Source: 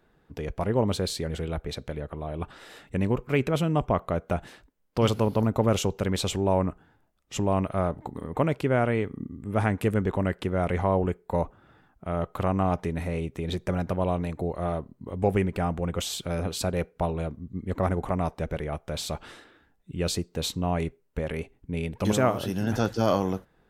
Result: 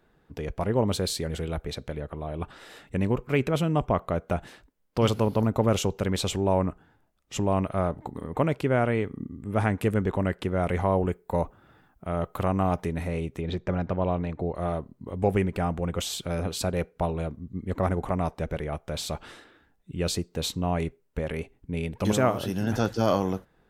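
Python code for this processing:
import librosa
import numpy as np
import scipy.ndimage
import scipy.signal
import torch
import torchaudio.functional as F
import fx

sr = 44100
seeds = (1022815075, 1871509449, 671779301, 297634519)

y = fx.high_shelf(x, sr, hz=6100.0, db=5.0, at=(0.92, 1.7))
y = fx.high_shelf(y, sr, hz=12000.0, db=10.5, at=(10.64, 12.89))
y = fx.bessel_lowpass(y, sr, hz=3300.0, order=2, at=(13.41, 14.55))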